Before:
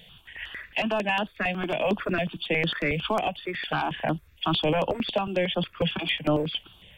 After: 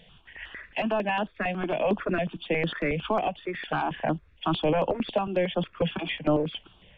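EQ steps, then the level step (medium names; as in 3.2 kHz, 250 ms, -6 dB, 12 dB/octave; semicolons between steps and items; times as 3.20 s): tape spacing loss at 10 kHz 29 dB; peaking EQ 91 Hz -6 dB 1.8 oct; +2.5 dB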